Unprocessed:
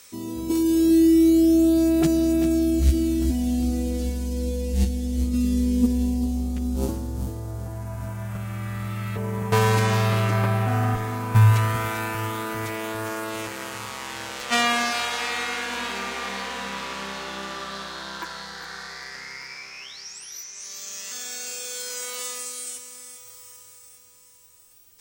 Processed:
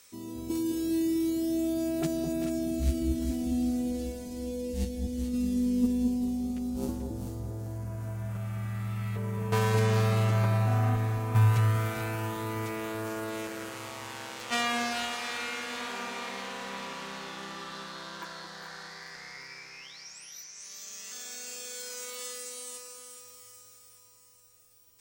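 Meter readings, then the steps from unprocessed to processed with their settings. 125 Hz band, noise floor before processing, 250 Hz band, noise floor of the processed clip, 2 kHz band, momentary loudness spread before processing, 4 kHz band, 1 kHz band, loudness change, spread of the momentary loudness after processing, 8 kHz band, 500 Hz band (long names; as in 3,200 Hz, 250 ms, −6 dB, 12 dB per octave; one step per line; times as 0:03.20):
−5.0 dB, −49 dBFS, −8.5 dB, −56 dBFS, −7.5 dB, 17 LU, −7.5 dB, −7.5 dB, −7.0 dB, 17 LU, −7.5 dB, −7.0 dB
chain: delay that swaps between a low-pass and a high-pass 218 ms, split 860 Hz, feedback 57%, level −3.5 dB
level −8 dB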